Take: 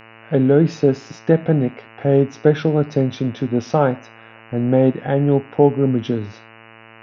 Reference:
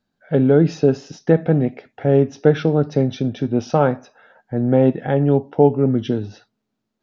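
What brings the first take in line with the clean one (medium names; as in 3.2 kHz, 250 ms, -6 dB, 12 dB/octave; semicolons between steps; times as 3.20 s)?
de-hum 112.4 Hz, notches 26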